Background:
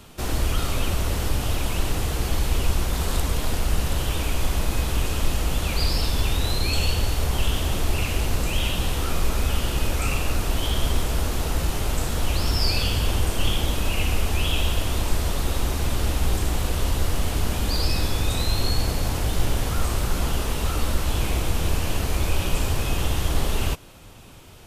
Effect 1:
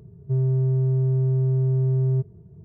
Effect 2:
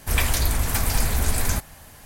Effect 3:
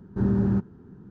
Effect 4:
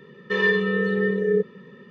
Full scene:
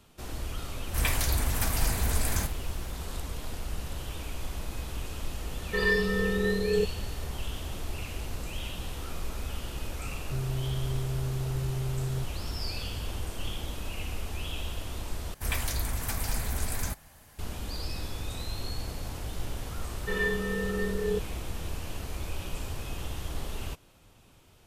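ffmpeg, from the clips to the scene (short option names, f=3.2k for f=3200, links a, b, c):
-filter_complex "[2:a]asplit=2[a][b];[4:a]asplit=2[c][d];[0:a]volume=-12.5dB[e];[a]asplit=2[f][g];[g]adelay=49,volume=-11.5dB[h];[f][h]amix=inputs=2:normalize=0[i];[1:a]acompressor=threshold=-23dB:ratio=6:attack=3.2:release=140:knee=1:detection=peak[j];[e]asplit=2[k][l];[k]atrim=end=15.344[m];[b]atrim=end=2.05,asetpts=PTS-STARTPTS,volume=-9dB[n];[l]atrim=start=17.386[o];[i]atrim=end=2.05,asetpts=PTS-STARTPTS,volume=-6dB,afade=t=in:d=0.004:c=hsin,afade=t=out:st=2.046:d=0.004:c=hsin,adelay=870[p];[c]atrim=end=1.9,asetpts=PTS-STARTPTS,volume=-5.5dB,afade=t=in:d=0.004:c=hsin,afade=t=out:st=1.896:d=0.004:c=hsin,adelay=5430[q];[j]atrim=end=2.64,asetpts=PTS-STARTPTS,volume=-6.5dB,afade=t=in:d=0.004:c=hsin,afade=t=out:st=2.636:d=0.004:c=hsin,adelay=441882S[r];[d]atrim=end=1.9,asetpts=PTS-STARTPTS,volume=-9dB,afade=t=in:d=0.004:c=hsin,afade=t=out:st=1.896:d=0.004:c=hsin,adelay=19770[s];[m][n]acrossfade=d=0.004:c1=hsin:c2=hsin[t];[t][o]acrossfade=d=0.004:c1=hsin:c2=hsin[u];[u][p][q][r][s]amix=inputs=5:normalize=0"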